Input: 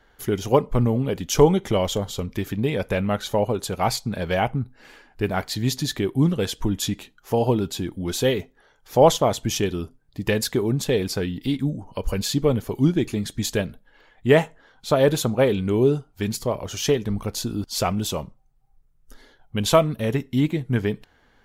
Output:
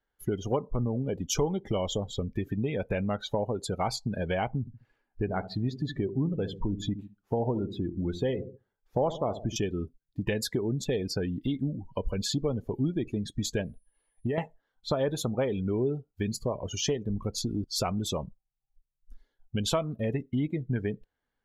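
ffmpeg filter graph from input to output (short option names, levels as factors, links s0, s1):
-filter_complex "[0:a]asettb=1/sr,asplit=3[s0][s1][s2];[s0]atrim=end=4.604[s3];[s1]atrim=start=4.6:end=9.56,asetpts=PTS-STARTPTS,afade=t=in:d=0.004:c=qsin,afade=t=out:st=4.956:d=0.004:c=qsin,highshelf=f=3200:g=-11,asplit=2[s4][s5];[s5]adelay=69,lowpass=f=1000:p=1,volume=0.251,asplit=2[s6][s7];[s7]adelay=69,lowpass=f=1000:p=1,volume=0.51,asplit=2[s8][s9];[s9]adelay=69,lowpass=f=1000:p=1,volume=0.51,asplit=2[s10][s11];[s11]adelay=69,lowpass=f=1000:p=1,volume=0.51,asplit=2[s12][s13];[s13]adelay=69,lowpass=f=1000:p=1,volume=0.51[s14];[s4][s6][s8][s10][s12][s14]amix=inputs=6:normalize=0,atrim=end_sample=218736[s15];[s2]atrim=start=9.556[s16];[s3][s15]acrossfade=d=0.004:c1=hsin:c2=qsin[s17];[s17][s16]acrossfade=d=0.004:c1=qsin:c2=hsin,asettb=1/sr,asplit=3[s18][s19][s20];[s18]atrim=end=13.644[s21];[s19]atrim=start=13.64:end=14.38,asetpts=PTS-STARTPTS,afade=t=in:d=0.004:c=qsin,afade=t=out:st=0.736:d=0.004:c=qsin,equalizer=f=1500:w=6.7:g=-8,acompressor=threshold=0.0891:ratio=6:attack=3.2:release=140:knee=1:detection=peak,aeval=exprs='val(0)+0.00224*sin(2*PI*9800*n/s)':c=same[s22];[s20]atrim=start=14.376[s23];[s21][s22]acrossfade=d=0.004:c1=hsin:c2=qsin[s24];[s24][s23]acrossfade=d=0.004:c1=qsin:c2=hsin,afftdn=nr=25:nf=-32,acompressor=threshold=0.0398:ratio=3"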